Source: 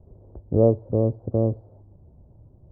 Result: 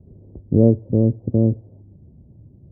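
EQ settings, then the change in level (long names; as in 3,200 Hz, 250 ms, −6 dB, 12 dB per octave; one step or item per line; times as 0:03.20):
resonant band-pass 240 Hz, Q 1.2
low-shelf EQ 210 Hz +11 dB
+4.0 dB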